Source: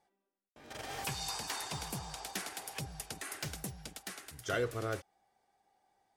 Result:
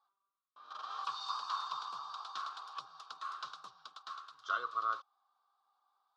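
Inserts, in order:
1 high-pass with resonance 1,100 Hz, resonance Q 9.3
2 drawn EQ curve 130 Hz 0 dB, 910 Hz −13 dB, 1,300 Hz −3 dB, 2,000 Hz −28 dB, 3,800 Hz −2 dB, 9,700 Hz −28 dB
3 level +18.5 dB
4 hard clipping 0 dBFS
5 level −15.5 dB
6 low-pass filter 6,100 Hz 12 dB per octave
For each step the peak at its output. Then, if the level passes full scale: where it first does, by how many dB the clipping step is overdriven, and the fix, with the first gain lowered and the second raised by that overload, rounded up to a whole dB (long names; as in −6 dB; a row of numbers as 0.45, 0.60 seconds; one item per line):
−16.5, −23.0, −4.5, −4.5, −20.0, −20.0 dBFS
no step passes full scale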